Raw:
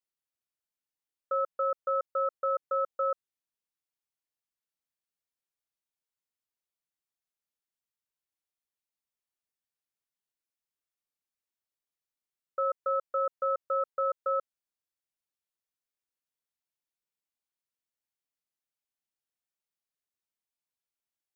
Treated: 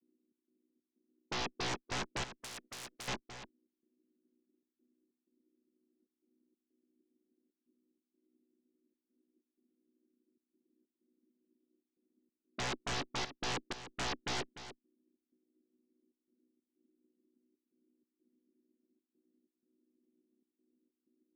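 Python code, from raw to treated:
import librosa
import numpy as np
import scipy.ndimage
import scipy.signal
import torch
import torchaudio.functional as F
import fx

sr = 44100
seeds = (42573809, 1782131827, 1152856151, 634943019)

y = fx.chord_vocoder(x, sr, chord='major triad', root=59)
y = scipy.signal.sosfilt(scipy.signal.cheby2(4, 50, 820.0, 'lowpass', fs=sr, output='sos'), y)
y = fx.rider(y, sr, range_db=10, speed_s=0.5)
y = fx.clip_asym(y, sr, top_db=-50.0, bottom_db=-46.0)
y = fx.step_gate(y, sr, bpm=94, pattern='xx.xx.xxx', floor_db=-60.0, edge_ms=4.5)
y = fx.fold_sine(y, sr, drive_db=20, ceiling_db=-43.5)
y = y + 10.0 ** (-12.5 / 20.0) * np.pad(y, (int(297 * sr / 1000.0), 0))[:len(y)]
y = fx.spectral_comp(y, sr, ratio=4.0, at=(2.39, 3.08))
y = y * 10.0 ** (9.5 / 20.0)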